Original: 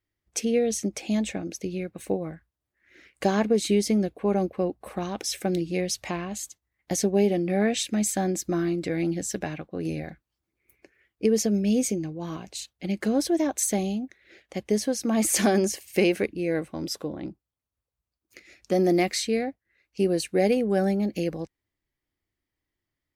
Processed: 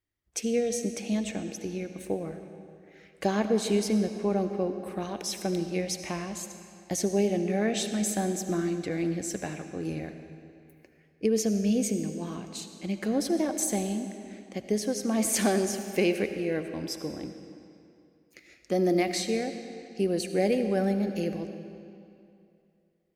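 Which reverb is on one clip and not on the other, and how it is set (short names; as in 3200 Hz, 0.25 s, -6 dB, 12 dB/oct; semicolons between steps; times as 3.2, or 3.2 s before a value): digital reverb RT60 2.6 s, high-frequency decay 0.85×, pre-delay 35 ms, DRR 8 dB; gain -3.5 dB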